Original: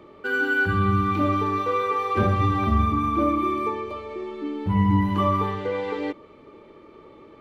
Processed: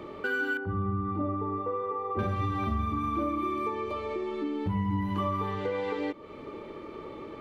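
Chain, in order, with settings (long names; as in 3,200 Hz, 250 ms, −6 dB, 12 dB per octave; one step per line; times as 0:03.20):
downward compressor 3 to 1, threshold −38 dBFS, peak gain reduction 16.5 dB
0:00.57–0:02.19: Savitzky-Golay smoothing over 65 samples
level +6 dB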